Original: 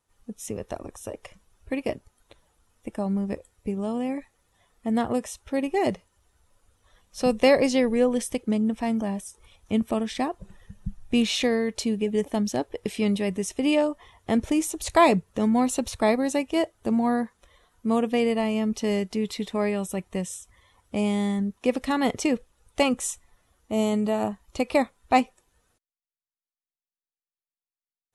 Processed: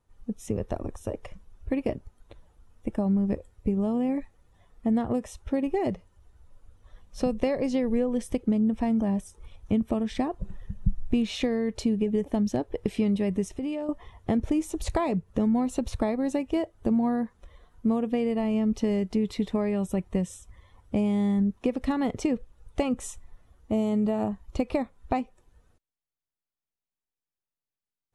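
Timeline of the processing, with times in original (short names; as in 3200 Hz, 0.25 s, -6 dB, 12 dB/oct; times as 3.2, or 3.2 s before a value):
13.48–13.89 compressor 3:1, threshold -36 dBFS
whole clip: compressor 6:1, threshold -26 dBFS; tilt -2.5 dB/oct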